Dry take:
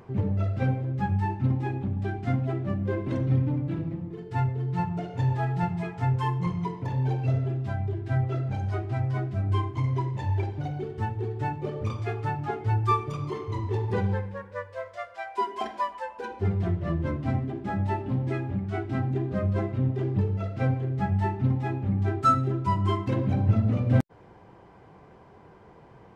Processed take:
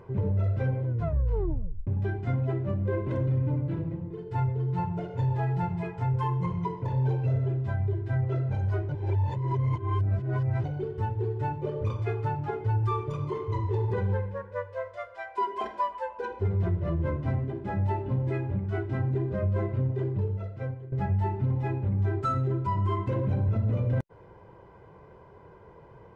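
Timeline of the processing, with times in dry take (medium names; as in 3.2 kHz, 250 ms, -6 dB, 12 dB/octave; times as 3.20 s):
0.86 s: tape stop 1.01 s
8.89–10.64 s: reverse
19.77–20.92 s: fade out, to -15.5 dB
whole clip: treble shelf 2.6 kHz -10.5 dB; comb 2 ms, depth 50%; peak limiter -19.5 dBFS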